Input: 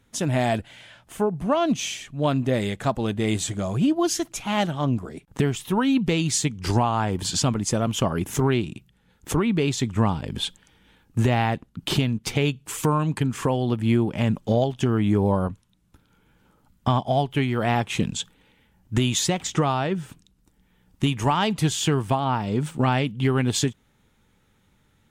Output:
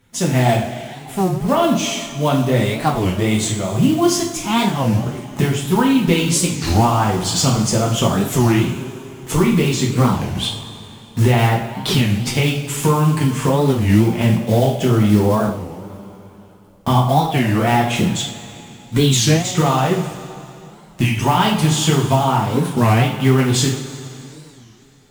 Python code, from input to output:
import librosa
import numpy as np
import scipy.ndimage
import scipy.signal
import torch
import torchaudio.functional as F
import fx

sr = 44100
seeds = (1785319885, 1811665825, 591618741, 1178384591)

y = fx.block_float(x, sr, bits=5)
y = fx.rev_double_slope(y, sr, seeds[0], early_s=0.5, late_s=3.1, knee_db=-16, drr_db=-3.0)
y = fx.record_warp(y, sr, rpm=33.33, depth_cents=250.0)
y = y * 10.0 ** (2.0 / 20.0)